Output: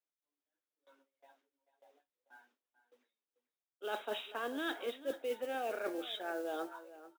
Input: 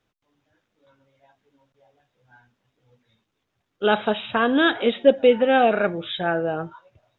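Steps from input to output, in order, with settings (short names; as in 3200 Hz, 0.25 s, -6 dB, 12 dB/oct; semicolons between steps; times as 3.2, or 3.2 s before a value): gate with hold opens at -52 dBFS; steep high-pass 270 Hz 48 dB/oct; reverse; compressor 6:1, threshold -31 dBFS, peak gain reduction 20 dB; reverse; modulation noise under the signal 21 dB; echo 0.44 s -15.5 dB; gain -5.5 dB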